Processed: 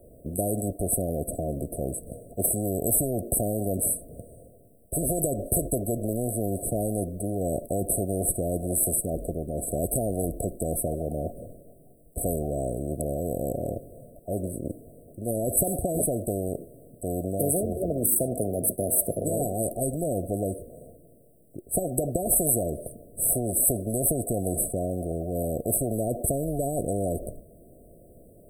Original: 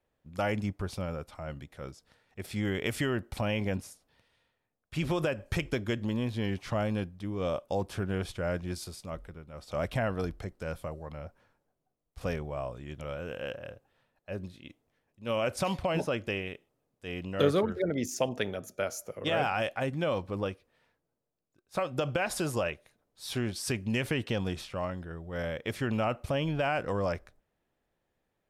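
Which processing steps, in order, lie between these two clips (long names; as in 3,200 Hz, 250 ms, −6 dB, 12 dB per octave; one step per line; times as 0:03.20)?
linear-phase brick-wall band-stop 720–7,800 Hz
every bin compressed towards the loudest bin 4 to 1
level +7 dB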